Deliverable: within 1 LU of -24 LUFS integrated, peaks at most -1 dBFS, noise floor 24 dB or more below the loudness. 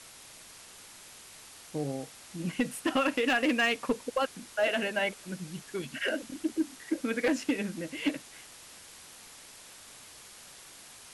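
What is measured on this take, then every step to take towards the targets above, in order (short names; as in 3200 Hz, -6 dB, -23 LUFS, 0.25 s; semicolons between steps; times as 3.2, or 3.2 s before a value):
clipped 0.4%; flat tops at -20.5 dBFS; noise floor -51 dBFS; noise floor target -56 dBFS; loudness -31.5 LUFS; peak -20.5 dBFS; loudness target -24.0 LUFS
-> clip repair -20.5 dBFS; denoiser 6 dB, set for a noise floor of -51 dBFS; gain +7.5 dB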